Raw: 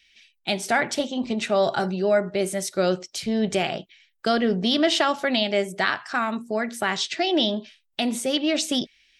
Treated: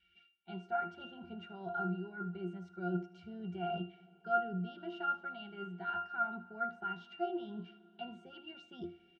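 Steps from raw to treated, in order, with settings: treble shelf 4.4 kHz +10 dB; band-stop 1.3 kHz, Q 6.1; reverse; compression 6:1, threshold -36 dBFS, peak gain reduction 19 dB; reverse; distance through air 110 m; pitch-class resonator F, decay 0.28 s; small resonant body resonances 1/1.4/2.3 kHz, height 16 dB, ringing for 35 ms; on a send: delay 77 ms -18 dB; on the sum: Schroeder reverb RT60 3.9 s, combs from 26 ms, DRR 18.5 dB; trim +11 dB

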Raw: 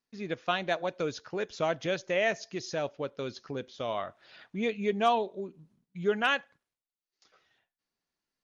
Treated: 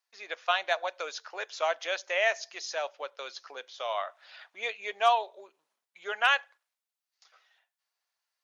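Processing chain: high-pass 650 Hz 24 dB/octave; trim +3.5 dB

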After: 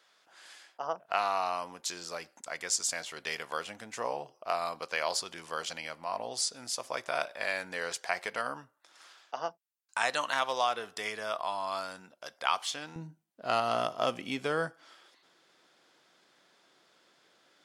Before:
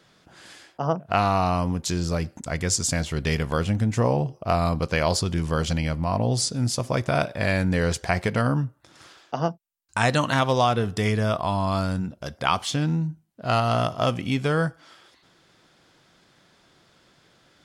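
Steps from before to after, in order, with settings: high-pass 700 Hz 12 dB/octave, from 12.96 s 330 Hz; trim -5.5 dB

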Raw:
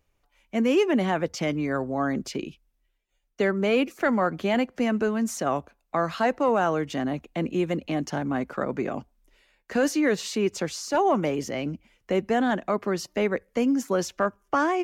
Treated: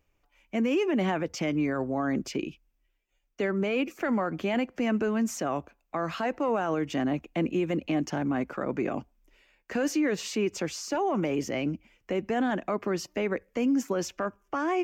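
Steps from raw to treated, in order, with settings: graphic EQ with 31 bands 315 Hz +4 dB, 2.5 kHz +4 dB, 4 kHz -5 dB, 10 kHz -10 dB; peak limiter -18.5 dBFS, peak gain reduction 7.5 dB; trim -1 dB

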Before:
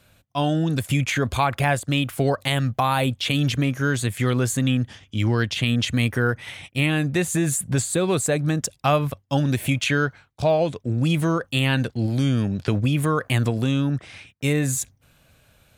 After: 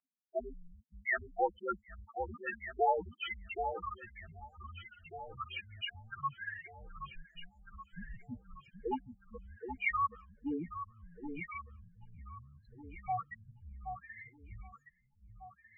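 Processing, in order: loudest bins only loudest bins 4; treble shelf 2.3 kHz +10.5 dB; mistuned SSB -340 Hz 270–3600 Hz; three-band isolator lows -22 dB, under 570 Hz, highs -23 dB, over 2.1 kHz; on a send: echo whose repeats swap between lows and highs 774 ms, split 1.1 kHz, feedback 55%, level -7 dB

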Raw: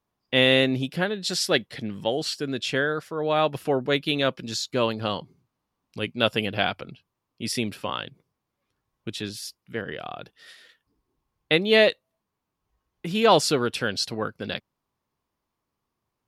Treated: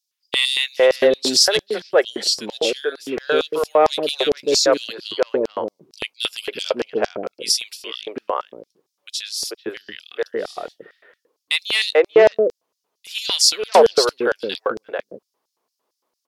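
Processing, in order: three bands offset in time highs, mids, lows 440/590 ms, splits 420/2000 Hz; Chebyshev shaper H 5 -15 dB, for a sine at -6.5 dBFS; LFO high-pass square 4.4 Hz 440–5100 Hz; trim +2 dB

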